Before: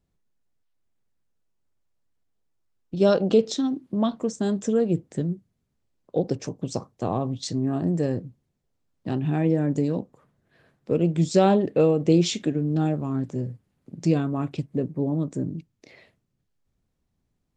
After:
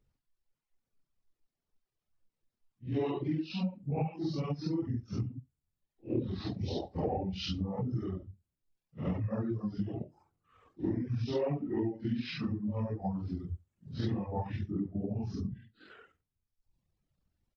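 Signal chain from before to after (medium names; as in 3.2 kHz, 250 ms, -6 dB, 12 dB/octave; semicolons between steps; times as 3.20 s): phase randomisation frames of 200 ms; compression 8:1, threshold -29 dBFS, peak gain reduction 17 dB; pitch shift -6 st; treble shelf 7.6 kHz -6 dB; reverb removal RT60 1.2 s; dynamic bell 750 Hz, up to +7 dB, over -54 dBFS, Q 1.3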